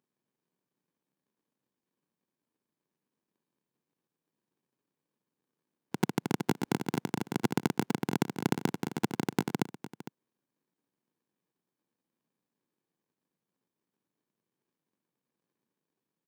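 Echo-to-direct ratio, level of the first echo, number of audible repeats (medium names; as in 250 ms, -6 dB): -14.5 dB, -14.5 dB, 1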